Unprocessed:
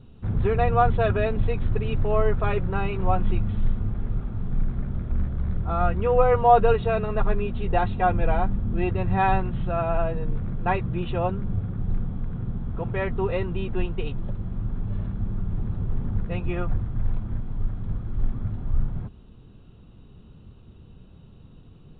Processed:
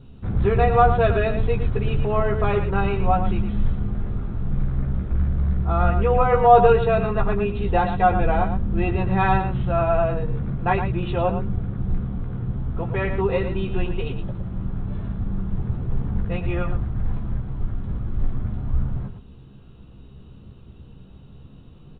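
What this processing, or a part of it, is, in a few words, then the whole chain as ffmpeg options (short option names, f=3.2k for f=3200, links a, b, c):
slapback doubling: -filter_complex "[0:a]asplit=3[a][b][c];[b]adelay=15,volume=-5.5dB[d];[c]adelay=113,volume=-8dB[e];[a][d][e]amix=inputs=3:normalize=0,volume=2dB"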